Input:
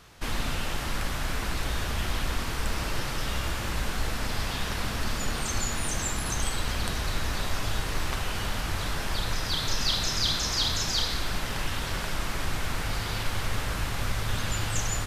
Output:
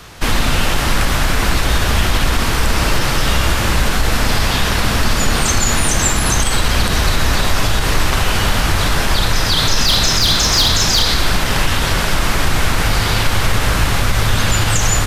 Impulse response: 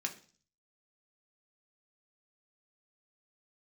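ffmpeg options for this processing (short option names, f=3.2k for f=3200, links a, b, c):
-filter_complex "[0:a]acrossover=split=240|1100|7300[a][b][c][d];[c]asoftclip=type=hard:threshold=-25dB[e];[a][b][e][d]amix=inputs=4:normalize=0,alimiter=level_in=18.5dB:limit=-1dB:release=50:level=0:latency=1,volume=-3dB"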